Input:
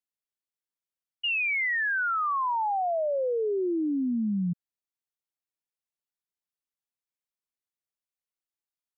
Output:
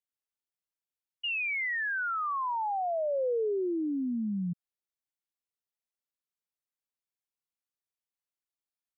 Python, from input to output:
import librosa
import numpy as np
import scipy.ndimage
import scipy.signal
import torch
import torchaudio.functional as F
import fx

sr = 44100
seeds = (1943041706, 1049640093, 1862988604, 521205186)

y = fx.dynamic_eq(x, sr, hz=480.0, q=1.8, threshold_db=-38.0, ratio=4.0, max_db=3)
y = y * librosa.db_to_amplitude(-4.5)